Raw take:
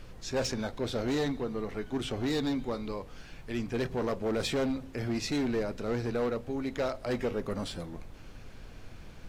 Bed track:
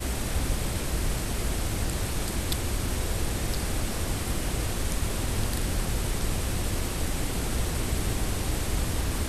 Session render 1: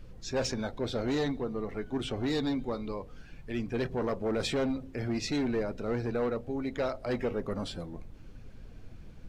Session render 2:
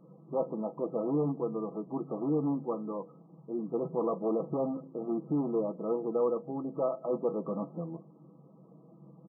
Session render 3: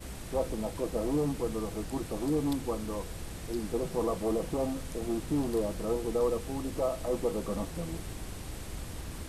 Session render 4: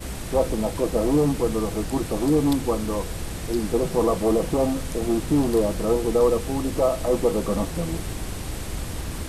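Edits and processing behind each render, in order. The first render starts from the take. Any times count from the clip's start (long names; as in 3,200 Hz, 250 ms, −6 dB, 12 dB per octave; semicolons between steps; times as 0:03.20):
broadband denoise 9 dB, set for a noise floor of −48 dBFS
comb filter 6.1 ms, depth 54%; brick-wall band-pass 130–1,300 Hz
mix in bed track −12.5 dB
level +9.5 dB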